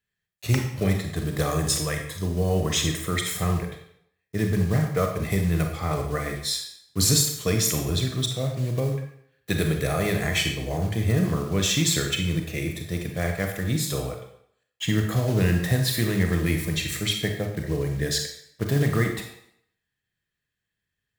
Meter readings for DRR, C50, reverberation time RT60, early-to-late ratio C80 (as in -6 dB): 3.0 dB, 5.5 dB, 0.65 s, 8.5 dB